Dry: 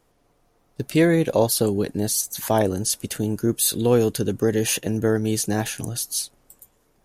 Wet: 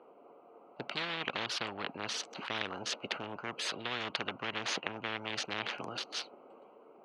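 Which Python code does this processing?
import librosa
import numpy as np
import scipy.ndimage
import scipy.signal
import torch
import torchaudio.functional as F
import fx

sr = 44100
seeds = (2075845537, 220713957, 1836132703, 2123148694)

y = fx.wiener(x, sr, points=25)
y = fx.cabinet(y, sr, low_hz=290.0, low_slope=24, high_hz=3100.0, hz=(300.0, 1300.0, 2900.0), db=(-6, 6, 4))
y = fx.spectral_comp(y, sr, ratio=10.0)
y = F.gain(torch.from_numpy(y), -6.0).numpy()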